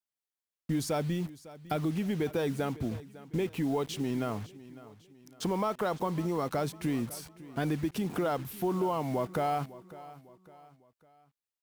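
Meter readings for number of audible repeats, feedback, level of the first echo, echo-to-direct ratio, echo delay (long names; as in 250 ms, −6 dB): 3, 42%, −18.0 dB, −17.0 dB, 553 ms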